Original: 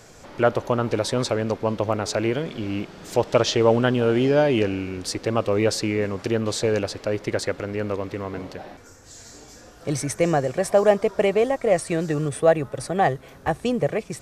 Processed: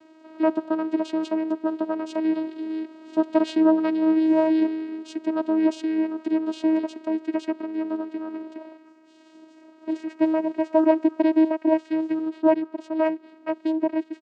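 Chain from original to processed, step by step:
downsampling to 11,025 Hz
channel vocoder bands 8, saw 317 Hz

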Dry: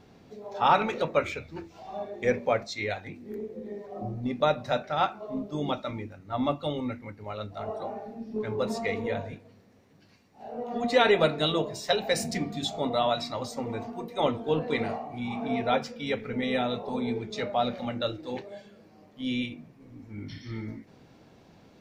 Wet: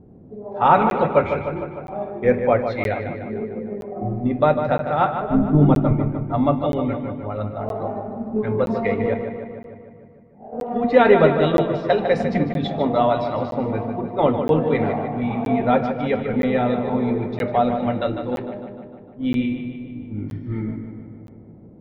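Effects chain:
low-pass that shuts in the quiet parts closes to 430 Hz, open at −23.5 dBFS
0:05.21–0:05.93: RIAA equalisation playback
treble cut that deepens with the level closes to 1,900 Hz, closed at −26.5 dBFS
low-shelf EQ 470 Hz +4.5 dB
0:09.14–0:10.53: downward compressor, threshold −42 dBFS, peak gain reduction 14.5 dB
feedback echo with a low-pass in the loop 151 ms, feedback 65%, low-pass 4,500 Hz, level −8 dB
convolution reverb RT60 1.6 s, pre-delay 5 ms, DRR 17.5 dB
regular buffer underruns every 0.97 s, samples 512, zero, from 0:00.90
level +6 dB

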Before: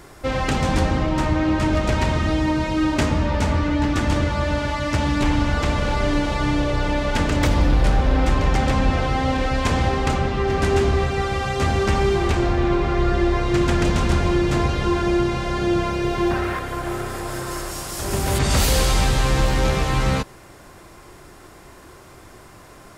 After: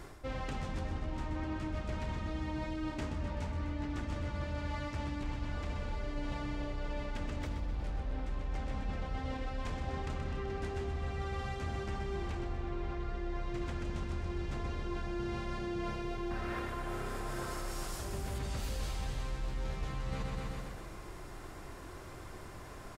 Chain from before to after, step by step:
low-shelf EQ 62 Hz +8.5 dB
repeating echo 127 ms, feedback 56%, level −8 dB
reversed playback
downward compressor 8 to 1, threshold −29 dBFS, peak gain reduction 21 dB
reversed playback
high-shelf EQ 6,100 Hz −4.5 dB
level −5.5 dB

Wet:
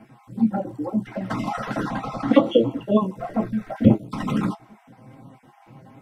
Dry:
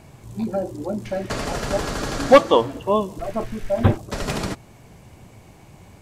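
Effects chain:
time-frequency cells dropped at random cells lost 27%
0:01.87–0:02.42: high-shelf EQ 8,800 Hz → 4,900 Hz −11.5 dB
flanger swept by the level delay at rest 9.8 ms, full sweep at −19.5 dBFS
convolution reverb, pre-delay 3 ms, DRR 2 dB
level −7.5 dB

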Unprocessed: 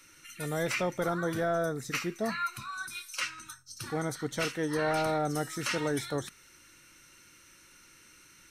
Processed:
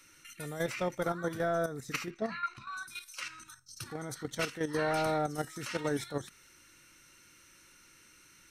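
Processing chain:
output level in coarse steps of 10 dB
0:02.10–0:02.77: low-pass filter 4,300 Hz 12 dB per octave

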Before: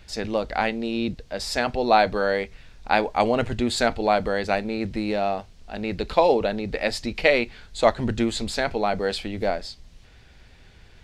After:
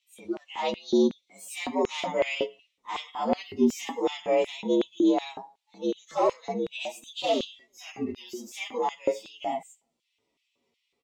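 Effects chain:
partials spread apart or drawn together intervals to 117%
repeating echo 113 ms, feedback 39%, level −21 dB
soft clipping −21.5 dBFS, distortion −11 dB
harmonic and percussive parts rebalanced percussive −17 dB
parametric band 1,600 Hz −11.5 dB 0.25 octaves
noise reduction from a noise print of the clip's start 17 dB
high-shelf EQ 5,000 Hz −9 dB
auto-filter high-pass square 2.7 Hz 300–2,800 Hz
level +5.5 dB

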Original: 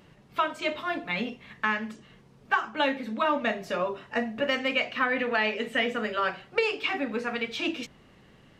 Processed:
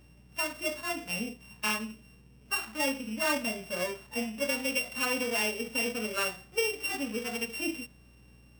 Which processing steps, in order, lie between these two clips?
samples sorted by size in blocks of 16 samples
harmonic and percussive parts rebalanced percussive −17 dB
mains hum 60 Hz, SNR 25 dB
level −2.5 dB

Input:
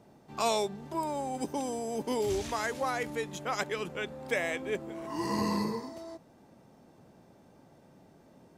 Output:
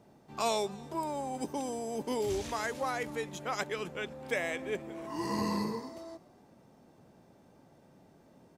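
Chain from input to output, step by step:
echo with shifted repeats 259 ms, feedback 37%, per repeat +71 Hz, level −23 dB
level −2 dB

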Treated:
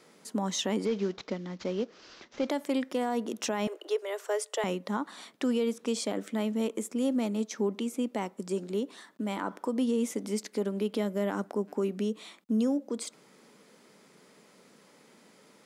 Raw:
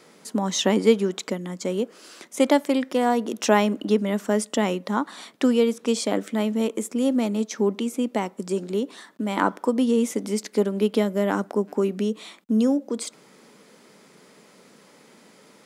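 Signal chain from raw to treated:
0:00.85–0:02.49: variable-slope delta modulation 32 kbit/s
0:03.67–0:04.64: Butterworth high-pass 360 Hz 72 dB per octave
brickwall limiter −14.5 dBFS, peak gain reduction 10 dB
level −6 dB

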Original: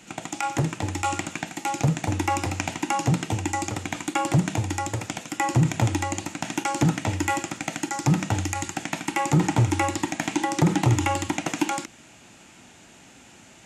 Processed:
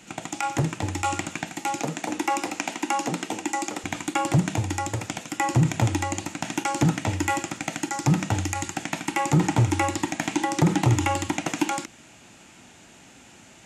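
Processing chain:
0:01.79–0:03.84: high-pass filter 220 Hz 24 dB per octave

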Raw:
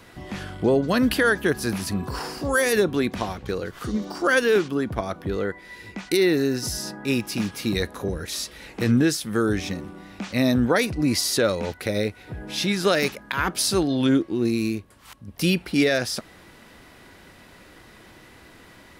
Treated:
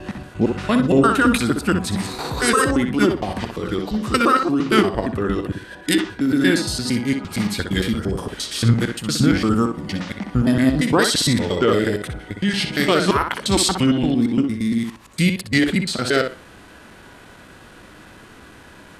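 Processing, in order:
slices reordered back to front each 115 ms, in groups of 3
tape delay 62 ms, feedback 23%, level −4.5 dB, low-pass 4,300 Hz
formants moved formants −3 semitones
level +4 dB

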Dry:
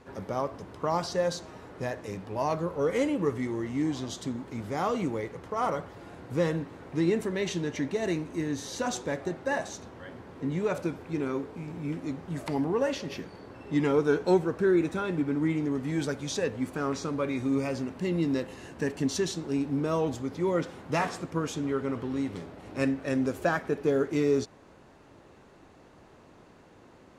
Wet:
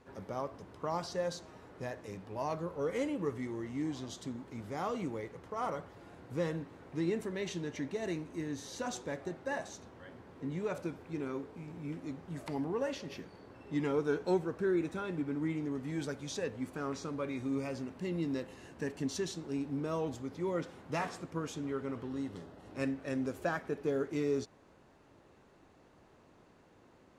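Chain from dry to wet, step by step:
0:22.09–0:22.71: notch filter 2,300 Hz, Q 5
level −7.5 dB

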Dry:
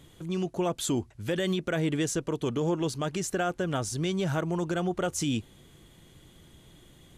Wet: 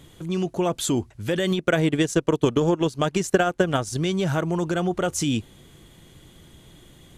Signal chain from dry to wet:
0:01.51–0:03.98: transient designer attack +9 dB, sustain −10 dB
level +5 dB

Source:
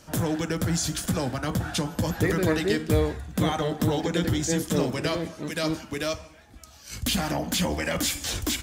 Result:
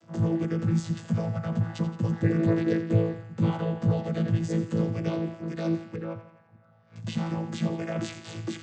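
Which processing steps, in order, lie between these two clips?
channel vocoder with a chord as carrier bare fifth, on A2
0:05.96–0:06.96: low-pass filter 1,400 Hz 12 dB per octave
on a send: feedback echo with a high-pass in the loop 85 ms, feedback 64%, high-pass 610 Hz, level −12.5 dB

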